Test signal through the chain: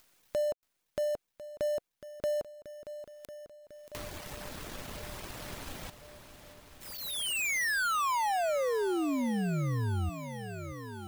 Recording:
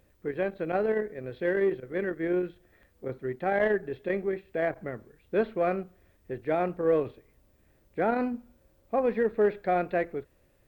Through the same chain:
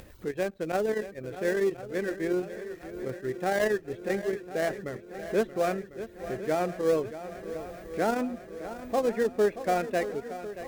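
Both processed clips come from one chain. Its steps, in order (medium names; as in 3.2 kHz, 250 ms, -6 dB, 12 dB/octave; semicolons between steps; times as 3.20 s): dead-time distortion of 0.083 ms; reverb removal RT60 0.54 s; upward compressor, threshold -36 dBFS; on a send: shuffle delay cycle 1049 ms, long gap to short 1.5:1, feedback 60%, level -13 dB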